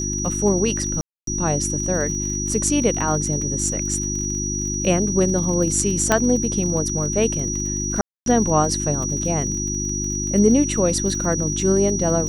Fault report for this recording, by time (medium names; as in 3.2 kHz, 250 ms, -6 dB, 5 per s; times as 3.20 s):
crackle 37 per s -28 dBFS
hum 50 Hz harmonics 7 -27 dBFS
whine 5.8 kHz -25 dBFS
1.01–1.27 s: dropout 263 ms
6.12 s: pop -2 dBFS
8.01–8.26 s: dropout 252 ms